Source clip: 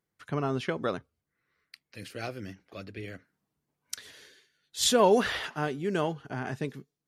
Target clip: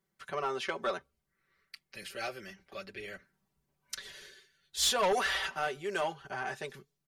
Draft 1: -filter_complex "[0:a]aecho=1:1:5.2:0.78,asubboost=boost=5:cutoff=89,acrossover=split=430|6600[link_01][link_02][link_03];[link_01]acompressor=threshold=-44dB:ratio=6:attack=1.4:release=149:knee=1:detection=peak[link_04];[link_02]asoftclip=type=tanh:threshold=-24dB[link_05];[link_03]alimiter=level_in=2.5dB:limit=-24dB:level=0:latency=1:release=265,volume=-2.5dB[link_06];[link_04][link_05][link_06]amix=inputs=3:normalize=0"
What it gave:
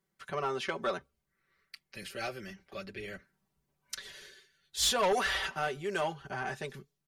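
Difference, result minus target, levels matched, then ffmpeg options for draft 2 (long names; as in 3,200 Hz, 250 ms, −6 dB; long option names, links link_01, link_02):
downward compressor: peak gain reduction −6.5 dB
-filter_complex "[0:a]aecho=1:1:5.2:0.78,asubboost=boost=5:cutoff=89,acrossover=split=430|6600[link_01][link_02][link_03];[link_01]acompressor=threshold=-52dB:ratio=6:attack=1.4:release=149:knee=1:detection=peak[link_04];[link_02]asoftclip=type=tanh:threshold=-24dB[link_05];[link_03]alimiter=level_in=2.5dB:limit=-24dB:level=0:latency=1:release=265,volume=-2.5dB[link_06];[link_04][link_05][link_06]amix=inputs=3:normalize=0"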